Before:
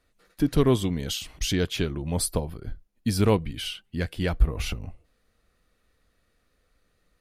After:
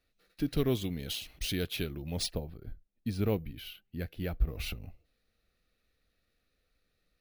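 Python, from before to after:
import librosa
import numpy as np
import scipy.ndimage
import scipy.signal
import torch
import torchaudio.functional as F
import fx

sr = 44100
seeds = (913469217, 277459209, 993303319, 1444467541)

y = fx.high_shelf(x, sr, hz=2500.0, db=-11.5, at=(2.32, 4.47), fade=0.02)
y = np.repeat(y[::3], 3)[:len(y)]
y = fx.graphic_eq_31(y, sr, hz=(1000, 2500, 4000, 8000, 12500), db=(-9, 5, 7, -4, 5))
y = F.gain(torch.from_numpy(y), -8.5).numpy()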